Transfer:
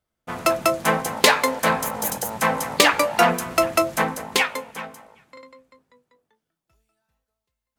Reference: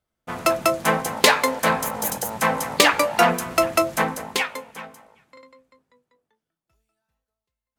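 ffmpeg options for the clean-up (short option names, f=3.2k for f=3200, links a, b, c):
-af "asetnsamples=n=441:p=0,asendcmd='4.32 volume volume -3.5dB',volume=0dB"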